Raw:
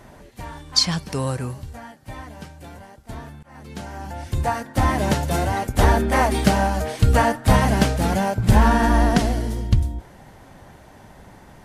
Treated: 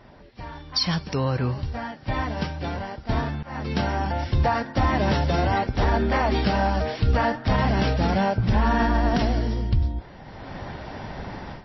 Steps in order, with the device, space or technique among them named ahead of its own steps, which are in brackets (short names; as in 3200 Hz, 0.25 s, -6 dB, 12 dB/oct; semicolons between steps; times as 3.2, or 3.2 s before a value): low-bitrate web radio (AGC gain up to 14.5 dB; limiter -8.5 dBFS, peak gain reduction 7.5 dB; gain -3.5 dB; MP3 24 kbps 16000 Hz)